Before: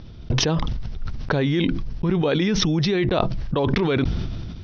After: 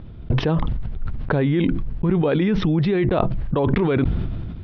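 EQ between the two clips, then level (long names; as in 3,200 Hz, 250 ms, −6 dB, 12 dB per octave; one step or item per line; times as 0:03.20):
high-frequency loss of the air 450 metres
+2.5 dB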